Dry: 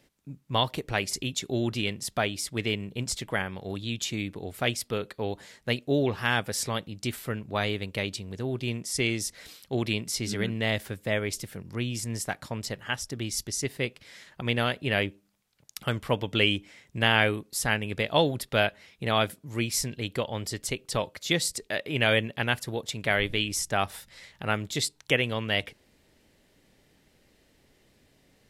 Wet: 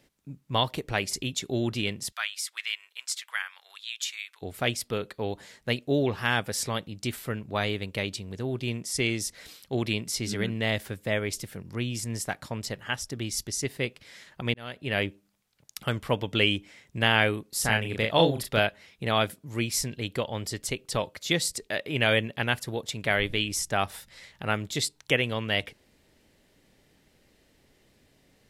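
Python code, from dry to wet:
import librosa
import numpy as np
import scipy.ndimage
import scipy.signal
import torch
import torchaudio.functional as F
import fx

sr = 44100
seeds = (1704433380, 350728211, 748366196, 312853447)

y = fx.highpass(x, sr, hz=1200.0, slope=24, at=(2.11, 4.41), fade=0.02)
y = fx.doubler(y, sr, ms=36.0, db=-3.5, at=(17.53, 18.59))
y = fx.edit(y, sr, fx.fade_in_span(start_s=14.54, length_s=0.5), tone=tone)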